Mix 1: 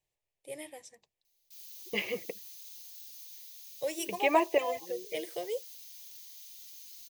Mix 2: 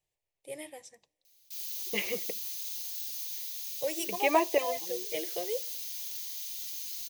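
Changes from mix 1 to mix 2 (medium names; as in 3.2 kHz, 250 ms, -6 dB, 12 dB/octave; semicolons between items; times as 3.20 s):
background +10.0 dB; reverb: on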